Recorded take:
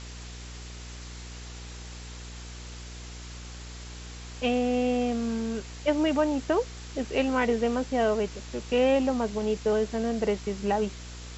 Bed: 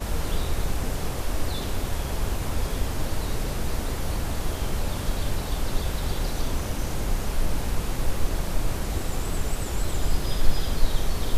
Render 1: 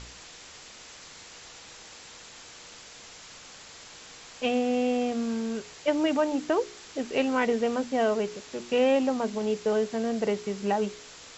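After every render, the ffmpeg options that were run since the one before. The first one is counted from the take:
-af "bandreject=f=60:t=h:w=4,bandreject=f=120:t=h:w=4,bandreject=f=180:t=h:w=4,bandreject=f=240:t=h:w=4,bandreject=f=300:t=h:w=4,bandreject=f=360:t=h:w=4,bandreject=f=420:t=h:w=4"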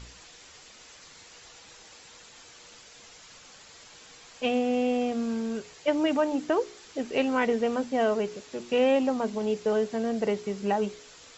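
-af "afftdn=nr=6:nf=-48"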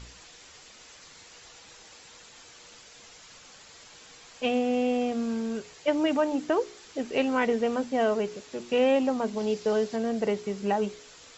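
-filter_complex "[0:a]asettb=1/sr,asplit=3[a][b][c];[a]atrim=end=9.374[d];[b]atrim=start=9.37:end=9.96,asetpts=PTS-STARTPTS,afade=t=in:d=0.004:c=qsin,afade=t=out:st=0.586:d=0.004:c=qsin,equalizer=f=4.8k:w=1.5:g=5.5[e];[c]atrim=start=9.956[f];[d][e]acrossfade=d=0.004:c1=hsin:c2=qsin[g];[g][f]acrossfade=d=0.004:c1=qsin:c2=hsin"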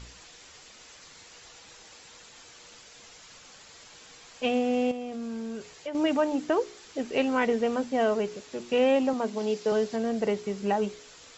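-filter_complex "[0:a]asettb=1/sr,asplit=3[a][b][c];[a]atrim=end=4.914[d];[b]atrim=start=4.91:end=5.95,asetpts=PTS-STARTPTS,afade=t=in:d=0.004:c=qsin,afade=t=out:st=1.036:d=0.004:c=qsin,acompressor=threshold=-32dB:ratio=5:attack=3.2:release=140:knee=1:detection=peak[e];[c]atrim=start=5.946[f];[d][e]acrossfade=d=0.004:c1=hsin:c2=qsin[g];[g][f]acrossfade=d=0.004:c1=qsin:c2=hsin,asettb=1/sr,asplit=3[h][i][j];[h]atrim=end=9.134[k];[i]atrim=start=9.13:end=9.72,asetpts=PTS-STARTPTS,afade=t=in:d=0.004:c=qsin,afade=t=out:st=0.586:d=0.004:c=qsin,highpass=180[l];[j]atrim=start=9.716[m];[k][l]acrossfade=d=0.004:c1=hsin:c2=qsin[n];[n][m]acrossfade=d=0.004:c1=qsin:c2=hsin"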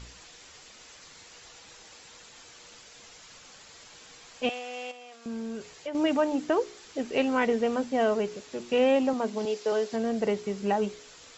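-filter_complex "[0:a]asettb=1/sr,asplit=3[a][b][c];[a]atrim=end=4.494[d];[b]atrim=start=4.49:end=5.26,asetpts=PTS-STARTPTS,afade=t=in:d=0.004:c=qsin,afade=t=out:st=0.766:d=0.004:c=qsin,highpass=1k[e];[c]atrim=start=5.256[f];[d][e]acrossfade=d=0.004:c1=hsin:c2=qsin[g];[g][f]acrossfade=d=0.004:c1=qsin:c2=hsin,asettb=1/sr,asplit=3[h][i][j];[h]atrim=end=9.454[k];[i]atrim=start=9.45:end=9.92,asetpts=PTS-STARTPTS,afade=t=in:d=0.004:c=qsin,afade=t=out:st=0.466:d=0.004:c=qsin,highpass=330[l];[j]atrim=start=9.916[m];[k][l]acrossfade=d=0.004:c1=hsin:c2=qsin[n];[n][m]acrossfade=d=0.004:c1=qsin:c2=hsin"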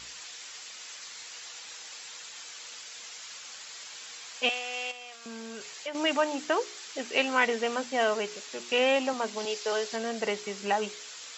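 -af "highpass=f=160:p=1,tiltshelf=f=740:g=-8"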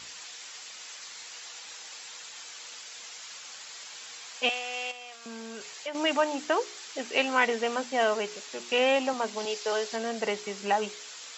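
-af "highpass=85,equalizer=f=820:t=o:w=0.77:g=2"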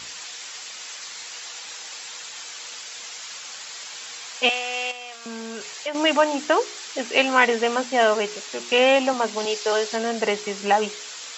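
-af "volume=7dB"

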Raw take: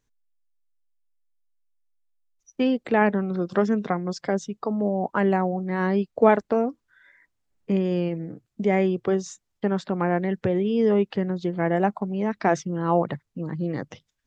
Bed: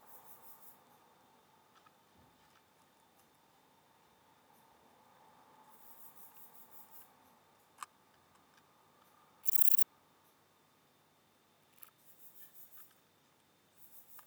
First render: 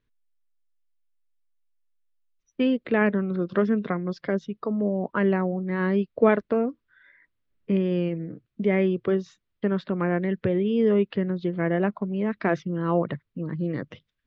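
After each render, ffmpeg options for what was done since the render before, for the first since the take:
-af "lowpass=f=3.9k:w=0.5412,lowpass=f=3.9k:w=1.3066,equalizer=f=800:t=o:w=0.41:g=-11.5"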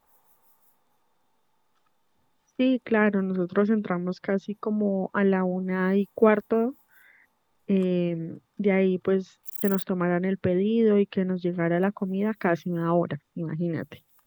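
-filter_complex "[1:a]volume=-6.5dB[a];[0:a][a]amix=inputs=2:normalize=0"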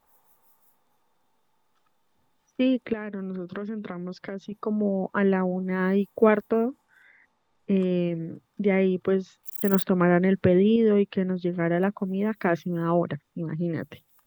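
-filter_complex "[0:a]asettb=1/sr,asplit=3[a][b][c];[a]atrim=end=2.934[d];[b]atrim=start=2.93:end=4.52,asetpts=PTS-STARTPTS,afade=t=in:d=0.004:c=qsin,afade=t=out:st=1.586:d=0.004:c=qsin,acompressor=threshold=-30dB:ratio=5:attack=3.2:release=140:knee=1:detection=peak[e];[c]atrim=start=4.516[f];[d][e]acrossfade=d=0.004:c1=hsin:c2=qsin[g];[g][f]acrossfade=d=0.004:c1=qsin:c2=hsin,asettb=1/sr,asplit=3[h][i][j];[h]atrim=end=6.684[k];[i]atrim=start=6.68:end=7.97,asetpts=PTS-STARTPTS,afade=t=in:d=0.004:c=qsin,afade=t=out:st=1.286:d=0.004:c=qsin,lowpass=6.8k[l];[j]atrim=start=7.966[m];[k][l]acrossfade=d=0.004:c1=hsin:c2=qsin[n];[n][m]acrossfade=d=0.004:c1=qsin:c2=hsin,asplit=3[o][p][q];[o]atrim=end=9.732[r];[p]atrim=start=9.728:end=10.762,asetpts=PTS-STARTPTS,volume=4.5dB[s];[q]atrim=start=10.758[t];[r][s]acrossfade=d=0.004:c1=hsin:c2=hsin[u];[u][t]acrossfade=d=0.004:c1=hsin:c2=hsin"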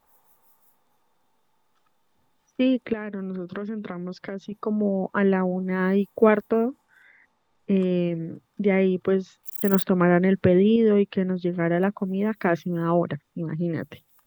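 -af "volume=1.5dB"

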